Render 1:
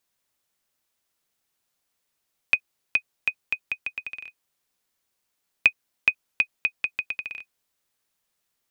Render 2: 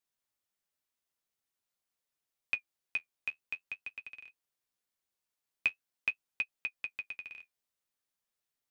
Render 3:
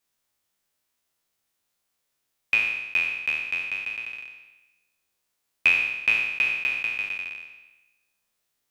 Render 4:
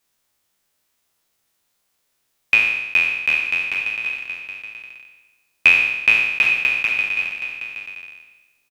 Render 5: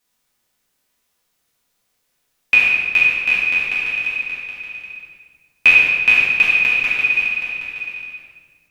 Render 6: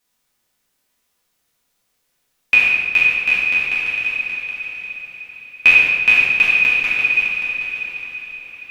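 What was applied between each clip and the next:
flange 0.46 Hz, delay 6.6 ms, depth 6.8 ms, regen -44%; trim -7.5 dB
spectral sustain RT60 1.07 s; trim +8 dB
delay 772 ms -10 dB; trim +7 dB
simulated room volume 1300 m³, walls mixed, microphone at 1.9 m; trim -1.5 dB
echo that smears into a reverb 509 ms, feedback 63%, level -14.5 dB

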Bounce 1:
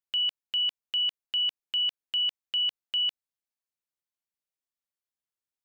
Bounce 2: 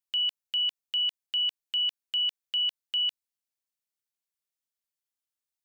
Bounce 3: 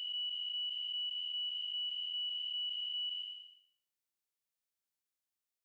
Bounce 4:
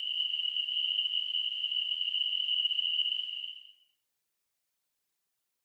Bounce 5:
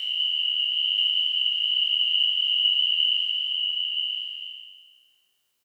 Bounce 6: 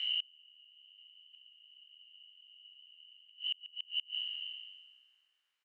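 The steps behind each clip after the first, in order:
treble shelf 2.5 kHz +8 dB; trim -5 dB
spectral blur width 521 ms; peak limiter -34.5 dBFS, peak gain reduction 5.5 dB
gated-style reverb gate 250 ms rising, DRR 2 dB; whisper effect; trim +6 dB
spectral sustain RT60 1.43 s; on a send: delay 981 ms -4.5 dB; on the sum: trim +4 dB
inverted gate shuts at -18 dBFS, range -30 dB; band-pass filter 1.8 kHz, Q 1.4; trim -1 dB

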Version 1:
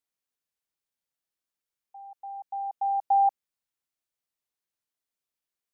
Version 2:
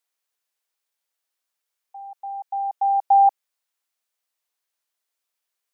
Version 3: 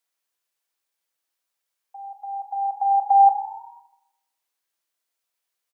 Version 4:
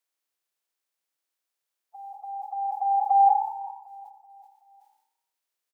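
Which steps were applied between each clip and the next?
high-pass 510 Hz; trim +7.5 dB
frequency-shifting echo 101 ms, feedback 63%, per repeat +31 Hz, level -20 dB; on a send at -7.5 dB: reverberation RT60 0.95 s, pre-delay 3 ms
coarse spectral quantiser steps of 30 dB; feedback delay 378 ms, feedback 45%, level -19 dB; decay stretcher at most 78 dB/s; trim -3.5 dB

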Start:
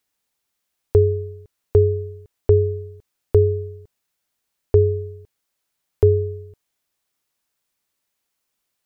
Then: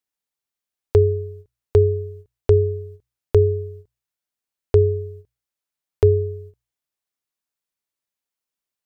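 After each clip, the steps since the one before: gate -39 dBFS, range -11 dB; hum notches 60/120 Hz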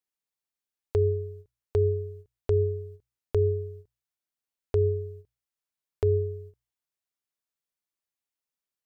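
peak limiter -10.5 dBFS, peak gain reduction 6.5 dB; trim -5 dB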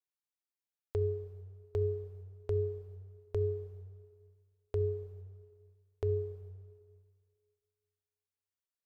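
plate-style reverb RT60 2 s, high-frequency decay 0.9×, DRR 10 dB; trim -8.5 dB

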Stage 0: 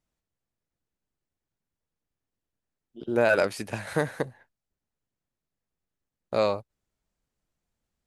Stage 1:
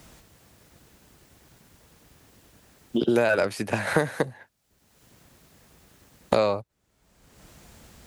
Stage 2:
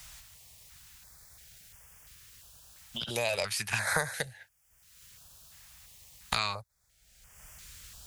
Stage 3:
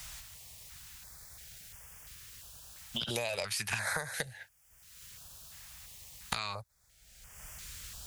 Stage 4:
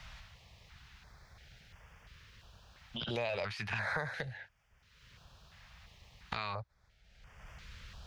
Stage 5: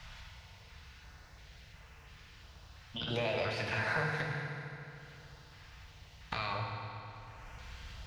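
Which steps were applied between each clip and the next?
high-pass 41 Hz; three bands compressed up and down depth 100%; trim +3.5 dB
amplifier tone stack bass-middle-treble 10-0-10; step-sequenced notch 2.9 Hz 390–4000 Hz; trim +6.5 dB
compression 12:1, threshold -34 dBFS, peak gain reduction 11.5 dB; trim +3.5 dB
transient shaper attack -4 dB, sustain +4 dB; distance through air 260 m; trim +1.5 dB
FDN reverb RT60 3 s, high-frequency decay 0.8×, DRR -0.5 dB

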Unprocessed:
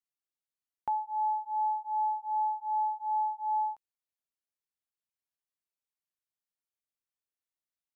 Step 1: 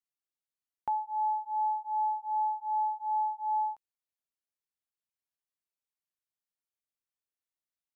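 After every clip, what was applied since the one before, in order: no audible change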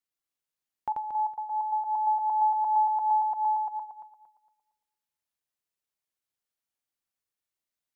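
backward echo that repeats 115 ms, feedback 52%, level -3 dB; trim +1.5 dB

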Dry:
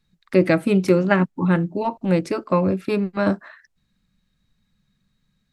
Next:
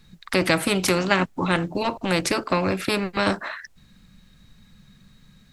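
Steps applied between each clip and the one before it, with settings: spectrum-flattening compressor 2:1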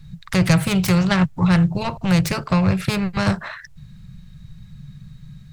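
self-modulated delay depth 0.11 ms; resonant low shelf 200 Hz +11 dB, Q 3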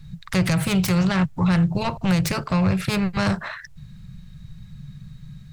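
peak limiter -12 dBFS, peak gain reduction 8.5 dB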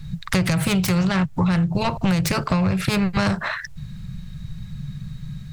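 compression, threshold -24 dBFS, peak gain reduction 9 dB; trim +7 dB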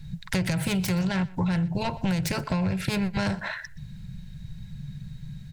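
Butterworth band-stop 1.2 kHz, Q 5.1; delay 123 ms -21.5 dB; trim -6 dB

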